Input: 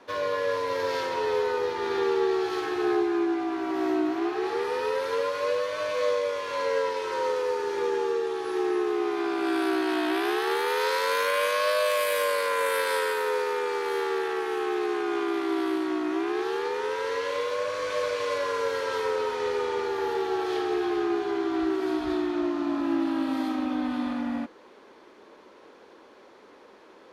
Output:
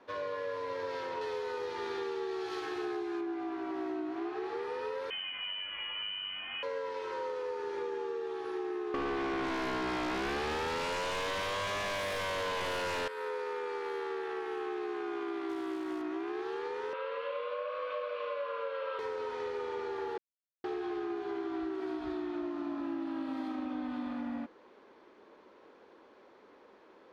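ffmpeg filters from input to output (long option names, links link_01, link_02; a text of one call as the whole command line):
ffmpeg -i in.wav -filter_complex "[0:a]asettb=1/sr,asplit=3[link_01][link_02][link_03];[link_01]atrim=end=1.214[link_04];[link_02]atrim=start=1.21:end=3.21,asetpts=PTS-STARTPTS,afade=type=in:duration=0.004:curve=qsin,afade=type=out:start_time=1.996:duration=0.004:curve=qsin,highshelf=frequency=3300:gain=11[link_05];[link_03]atrim=start=3.206[link_06];[link_04][link_05]acrossfade=duration=0.004:curve1=hsin:curve2=qsin[link_07];[link_07][link_06]acrossfade=duration=0.004:curve1=qsin:curve2=hsin,asettb=1/sr,asplit=3[link_08][link_09][link_10];[link_08]atrim=end=5.104[link_11];[link_09]atrim=start=5.1:end=6.63,asetpts=PTS-STARTPTS,afade=type=in:duration=0.004:curve=qsin,afade=type=out:start_time=1.526:duration=0.004:curve=qsin,lowpass=frequency=3000:width_type=q:width=0.5098,lowpass=frequency=3000:width_type=q:width=0.6013,lowpass=frequency=3000:width_type=q:width=0.9,lowpass=frequency=3000:width_type=q:width=2.563,afreqshift=-3500[link_12];[link_10]atrim=start=6.626[link_13];[link_11][link_12]acrossfade=duration=0.004:curve1=hsin:curve2=qsin[link_14];[link_14][link_13]acrossfade=duration=0.004:curve1=qsin:curve2=hsin,asettb=1/sr,asplit=3[link_15][link_16][link_17];[link_15]atrim=end=8.944[link_18];[link_16]atrim=start=8.94:end=13.08,asetpts=PTS-STARTPTS,afade=type=in:duration=0.004:curve=qsin,afade=type=out:start_time=4.136:duration=0.004:curve=qsin,aeval=exprs='0.2*sin(PI/2*4.47*val(0)/0.2)':channel_layout=same[link_19];[link_17]atrim=start=13.076[link_20];[link_18][link_19]acrossfade=duration=0.004:curve1=hsin:curve2=qsin[link_21];[link_21][link_20]acrossfade=duration=0.004:curve1=qsin:curve2=hsin,asettb=1/sr,asplit=3[link_22][link_23][link_24];[link_22]atrim=end=15.494[link_25];[link_23]atrim=start=15.49:end=16.02,asetpts=PTS-STARTPTS,afade=type=in:duration=0.004:curve=qsin,afade=type=out:start_time=0.526:duration=0.004:curve=qsin,acrusher=bits=4:mode=log:mix=0:aa=0.000001[link_26];[link_24]atrim=start=16.016[link_27];[link_25][link_26]acrossfade=duration=0.004:curve1=hsin:curve2=qsin[link_28];[link_28][link_27]acrossfade=duration=0.004:curve1=qsin:curve2=hsin,asettb=1/sr,asplit=3[link_29][link_30][link_31];[link_29]atrim=end=16.934[link_32];[link_30]atrim=start=16.93:end=18.99,asetpts=PTS-STARTPTS,afade=type=in:duration=0.004:curve=qsin,afade=type=out:start_time=2.056:duration=0.004:curve=qsin,highpass=frequency=380:width=0.5412,highpass=frequency=380:width=1.3066,equalizer=frequency=390:width_type=q:width=4:gain=-9,equalizer=frequency=550:width_type=q:width=4:gain=7,equalizer=frequency=860:width_type=q:width=4:gain=-7,equalizer=frequency=1200:width_type=q:width=4:gain=9,equalizer=frequency=1900:width_type=q:width=4:gain=-6,equalizer=frequency=2700:width_type=q:width=4:gain=6,lowpass=frequency=3600:width=0.5412,lowpass=frequency=3600:width=1.3066[link_33];[link_31]atrim=start=18.986[link_34];[link_32][link_33]acrossfade=duration=0.004:curve1=hsin:curve2=qsin[link_35];[link_35][link_34]acrossfade=duration=0.004:curve1=qsin:curve2=hsin,asplit=3[link_36][link_37][link_38];[link_36]atrim=end=20.18,asetpts=PTS-STARTPTS,afade=type=out:start_time=20.176:duration=0.004:curve=hsin[link_39];[link_37]atrim=start=20.18:end=20.64,asetpts=PTS-STARTPTS,volume=0[link_40];[link_38]atrim=start=20.64,asetpts=PTS-STARTPTS,afade=type=in:duration=0.004:curve=hsin[link_41];[link_39][link_40][link_41]concat=n=3:v=0:a=1,acompressor=threshold=-27dB:ratio=6,aemphasis=mode=reproduction:type=50fm,volume=-6.5dB" out.wav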